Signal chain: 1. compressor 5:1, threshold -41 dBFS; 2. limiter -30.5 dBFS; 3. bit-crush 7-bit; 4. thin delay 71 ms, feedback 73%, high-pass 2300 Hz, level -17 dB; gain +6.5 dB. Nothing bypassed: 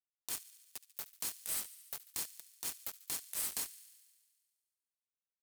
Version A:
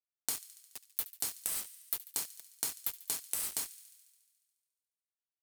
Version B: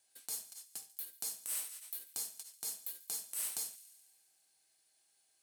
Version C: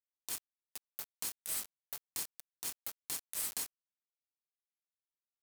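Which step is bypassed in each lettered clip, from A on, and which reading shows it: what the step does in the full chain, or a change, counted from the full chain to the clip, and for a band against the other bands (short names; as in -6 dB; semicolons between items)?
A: 2, crest factor change +7.0 dB; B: 3, distortion 0 dB; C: 4, echo-to-direct -19.5 dB to none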